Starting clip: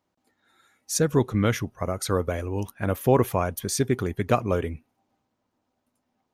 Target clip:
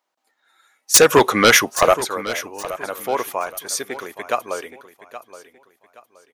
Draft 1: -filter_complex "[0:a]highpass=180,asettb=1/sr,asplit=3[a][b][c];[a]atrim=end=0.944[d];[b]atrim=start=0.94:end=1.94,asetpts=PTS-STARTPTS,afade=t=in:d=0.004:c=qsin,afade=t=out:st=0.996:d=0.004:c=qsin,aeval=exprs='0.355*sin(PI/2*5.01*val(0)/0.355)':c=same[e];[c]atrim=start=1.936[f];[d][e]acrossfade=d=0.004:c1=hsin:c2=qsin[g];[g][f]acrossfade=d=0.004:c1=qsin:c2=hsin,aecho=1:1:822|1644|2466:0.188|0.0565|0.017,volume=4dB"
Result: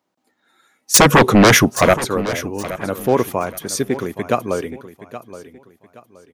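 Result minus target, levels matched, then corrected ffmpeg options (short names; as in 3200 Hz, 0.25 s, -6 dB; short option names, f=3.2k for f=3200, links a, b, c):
250 Hz band +7.5 dB
-filter_complex "[0:a]highpass=670,asettb=1/sr,asplit=3[a][b][c];[a]atrim=end=0.944[d];[b]atrim=start=0.94:end=1.94,asetpts=PTS-STARTPTS,afade=t=in:d=0.004:c=qsin,afade=t=out:st=0.996:d=0.004:c=qsin,aeval=exprs='0.355*sin(PI/2*5.01*val(0)/0.355)':c=same[e];[c]atrim=start=1.936[f];[d][e]acrossfade=d=0.004:c1=hsin:c2=qsin[g];[g][f]acrossfade=d=0.004:c1=qsin:c2=hsin,aecho=1:1:822|1644|2466:0.188|0.0565|0.017,volume=4dB"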